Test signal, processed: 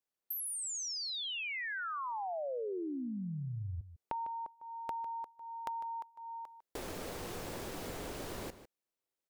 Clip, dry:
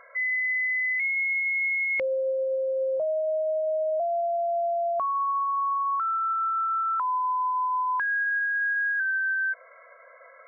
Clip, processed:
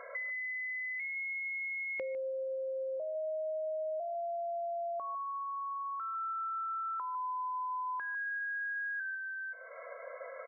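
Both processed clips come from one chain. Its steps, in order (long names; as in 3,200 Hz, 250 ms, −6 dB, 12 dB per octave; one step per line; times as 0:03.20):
parametric band 440 Hz +9.5 dB 1.8 octaves
downward compressor 6 to 1, threshold −39 dBFS
slap from a distant wall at 26 metres, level −13 dB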